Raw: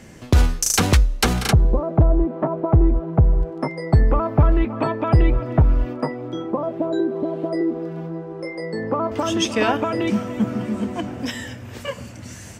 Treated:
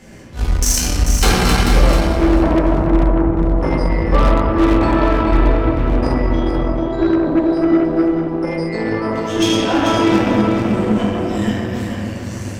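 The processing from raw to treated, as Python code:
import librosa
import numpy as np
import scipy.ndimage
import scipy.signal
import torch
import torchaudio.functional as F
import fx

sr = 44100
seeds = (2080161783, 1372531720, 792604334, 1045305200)

p1 = fx.auto_swell(x, sr, attack_ms=208.0)
p2 = fx.room_shoebox(p1, sr, seeds[0], volume_m3=120.0, walls='hard', distance_m=1.1)
p3 = fx.cheby_harmonics(p2, sr, harmonics=(6,), levels_db=(-20,), full_scale_db=-2.5)
p4 = p3 + fx.echo_feedback(p3, sr, ms=439, feedback_pct=16, wet_db=-7.0, dry=0)
y = p4 * librosa.db_to_amplitude(-2.5)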